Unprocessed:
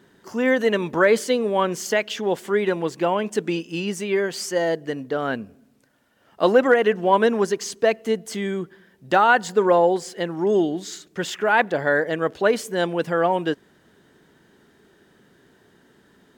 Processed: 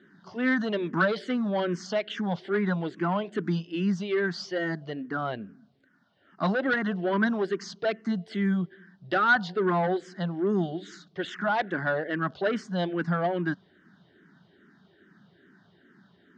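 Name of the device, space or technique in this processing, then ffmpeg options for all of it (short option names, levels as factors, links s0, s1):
barber-pole phaser into a guitar amplifier: -filter_complex "[0:a]asplit=2[s0][s1];[s1]afreqshift=-2.4[s2];[s0][s2]amix=inputs=2:normalize=1,asoftclip=type=tanh:threshold=0.15,highpass=100,equalizer=f=180:t=q:w=4:g=8,equalizer=f=480:t=q:w=4:g=-10,equalizer=f=910:t=q:w=4:g=-5,equalizer=f=1500:t=q:w=4:g=4,equalizer=f=2500:t=q:w=4:g=-9,lowpass=f=4500:w=0.5412,lowpass=f=4500:w=1.3066"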